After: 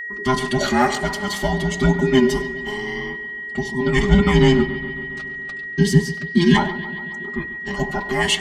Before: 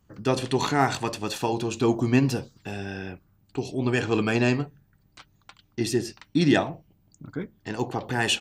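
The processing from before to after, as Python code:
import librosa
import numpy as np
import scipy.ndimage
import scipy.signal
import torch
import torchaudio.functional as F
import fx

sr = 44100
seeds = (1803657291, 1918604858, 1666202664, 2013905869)

y = fx.band_invert(x, sr, width_hz=500)
y = y + 1.0 * np.pad(y, (int(4.9 * sr / 1000.0), 0))[:len(y)]
y = y + 10.0 ** (-20.5 / 20.0) * np.pad(y, (int(98 * sr / 1000.0), 0))[:len(y)]
y = y + 10.0 ** (-29.0 / 20.0) * np.sin(2.0 * np.pi * 1900.0 * np.arange(len(y)) / sr)
y = fx.low_shelf(y, sr, hz=360.0, db=7.5, at=(3.96, 6.0))
y = fx.echo_bbd(y, sr, ms=138, stages=4096, feedback_pct=69, wet_db=-15.5)
y = F.gain(torch.from_numpy(y), 1.5).numpy()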